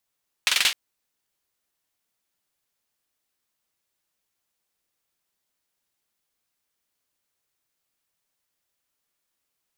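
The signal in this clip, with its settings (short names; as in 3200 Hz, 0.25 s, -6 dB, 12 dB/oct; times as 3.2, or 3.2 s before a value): hand clap length 0.26 s, bursts 5, apart 45 ms, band 2900 Hz, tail 0.27 s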